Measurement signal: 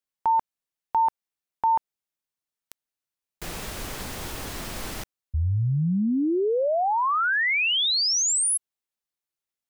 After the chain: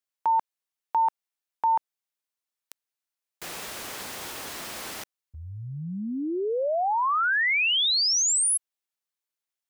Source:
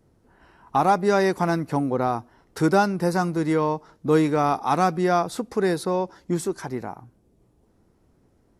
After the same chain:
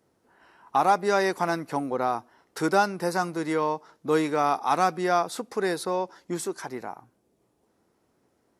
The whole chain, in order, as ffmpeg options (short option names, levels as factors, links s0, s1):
-af "highpass=f=520:p=1"